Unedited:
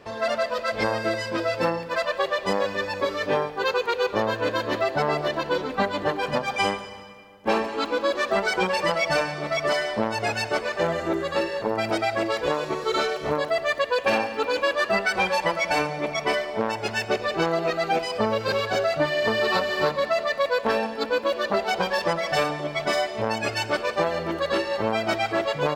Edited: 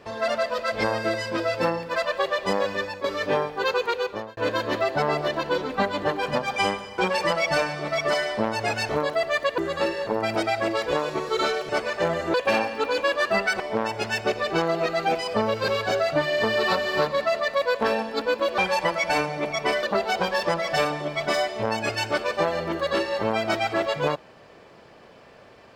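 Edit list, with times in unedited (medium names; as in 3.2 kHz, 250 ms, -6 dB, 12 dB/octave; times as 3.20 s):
2.78–3.04 s: fade out, to -10.5 dB
3.88–4.37 s: fade out
6.98–8.57 s: delete
10.48–11.13 s: swap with 13.24–13.93 s
15.19–16.44 s: move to 21.42 s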